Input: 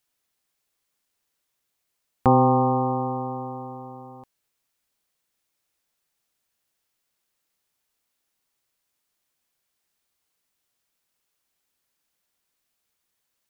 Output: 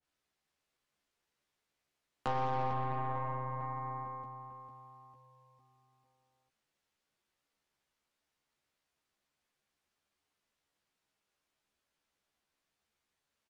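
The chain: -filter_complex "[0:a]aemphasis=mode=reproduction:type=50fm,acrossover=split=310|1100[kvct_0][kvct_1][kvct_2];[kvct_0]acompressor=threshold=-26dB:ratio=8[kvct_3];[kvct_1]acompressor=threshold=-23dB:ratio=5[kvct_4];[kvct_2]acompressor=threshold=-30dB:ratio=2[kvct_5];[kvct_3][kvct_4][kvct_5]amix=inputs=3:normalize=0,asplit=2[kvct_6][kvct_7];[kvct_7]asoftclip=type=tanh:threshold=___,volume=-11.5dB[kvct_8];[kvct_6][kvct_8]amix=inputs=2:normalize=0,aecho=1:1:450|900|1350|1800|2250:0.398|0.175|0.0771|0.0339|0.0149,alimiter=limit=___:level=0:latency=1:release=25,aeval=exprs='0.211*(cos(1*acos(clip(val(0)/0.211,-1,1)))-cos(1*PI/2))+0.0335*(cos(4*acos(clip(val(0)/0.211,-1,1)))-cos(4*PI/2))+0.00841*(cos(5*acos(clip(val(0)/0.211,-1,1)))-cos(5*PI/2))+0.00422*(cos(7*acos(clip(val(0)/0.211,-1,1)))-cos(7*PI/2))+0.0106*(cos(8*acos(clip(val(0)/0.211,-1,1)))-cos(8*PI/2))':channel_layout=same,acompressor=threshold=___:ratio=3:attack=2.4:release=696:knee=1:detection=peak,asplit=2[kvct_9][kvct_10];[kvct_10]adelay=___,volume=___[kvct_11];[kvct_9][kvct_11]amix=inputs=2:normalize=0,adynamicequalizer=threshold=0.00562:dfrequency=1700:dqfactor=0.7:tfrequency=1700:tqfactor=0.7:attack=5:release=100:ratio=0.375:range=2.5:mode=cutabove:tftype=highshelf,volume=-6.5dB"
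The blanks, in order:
-23dB, -13.5dB, -27dB, 14, -3dB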